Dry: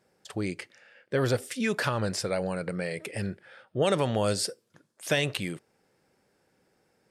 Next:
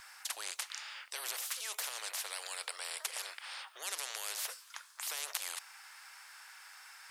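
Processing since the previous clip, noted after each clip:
Butterworth high-pass 1,000 Hz 36 dB per octave
every bin compressed towards the loudest bin 10 to 1
level +1 dB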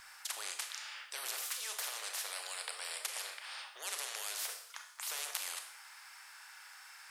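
four-comb reverb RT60 0.62 s, combs from 26 ms, DRR 5 dB
level −1.5 dB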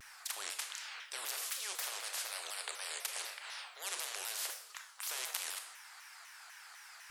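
pitch modulation by a square or saw wave saw down 4 Hz, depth 250 cents

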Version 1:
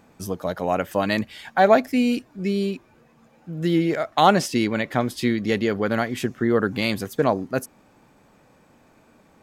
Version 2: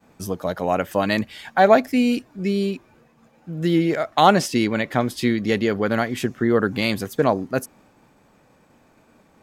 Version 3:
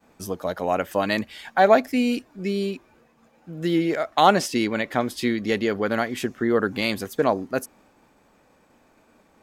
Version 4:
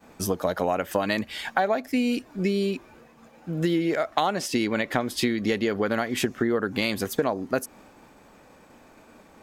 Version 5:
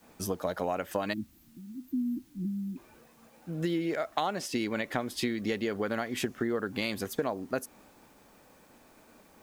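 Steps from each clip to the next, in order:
downward expander −53 dBFS; level +1.5 dB
parametric band 130 Hz −7 dB 1.1 octaves; level −1.5 dB
downward compressor 10 to 1, threshold −27 dBFS, peak gain reduction 17.5 dB; level +6.5 dB
time-frequency box erased 0:01.13–0:02.77, 350–12,000 Hz; bit-depth reduction 10 bits, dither triangular; level −6.5 dB

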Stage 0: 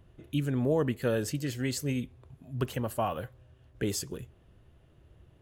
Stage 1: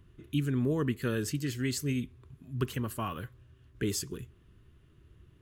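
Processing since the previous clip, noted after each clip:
flat-topped bell 660 Hz −11.5 dB 1 octave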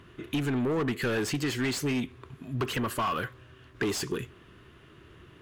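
mid-hump overdrive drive 25 dB, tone 2,400 Hz, clips at −16.5 dBFS
downward compressor 2.5 to 1, threshold −27 dBFS, peak gain reduction 4 dB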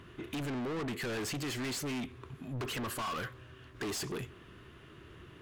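soft clipping −34.5 dBFS, distortion −9 dB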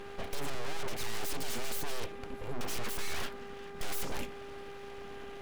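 full-wave rectification
hum with harmonics 400 Hz, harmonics 6, −54 dBFS −8 dB per octave
level +6.5 dB

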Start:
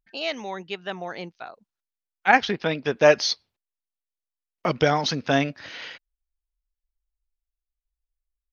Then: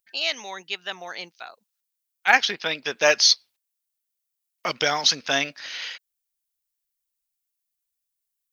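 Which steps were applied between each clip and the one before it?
spectral tilt +4.5 dB per octave
level −1.5 dB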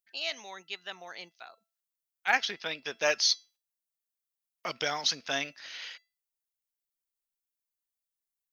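tuned comb filter 670 Hz, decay 0.31 s, mix 50%
level −3 dB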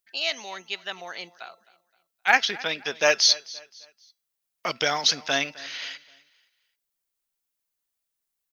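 repeating echo 261 ms, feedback 36%, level −20.5 dB
level +7 dB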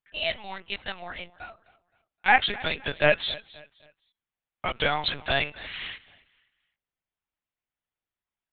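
low-pass that shuts in the quiet parts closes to 2,900 Hz, open at −22 dBFS
linear-prediction vocoder at 8 kHz pitch kept

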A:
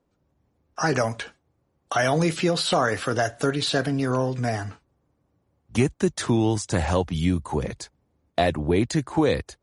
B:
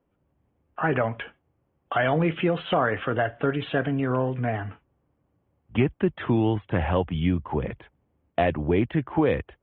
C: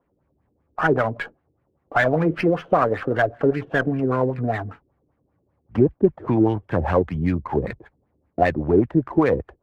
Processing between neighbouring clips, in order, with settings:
Butterworth low-pass 3,300 Hz 96 dB per octave; level −1 dB
auto-filter low-pass sine 5.1 Hz 350–2,200 Hz; harmonic generator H 7 −44 dB, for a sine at −5.5 dBFS; windowed peak hold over 3 samples; level +1.5 dB

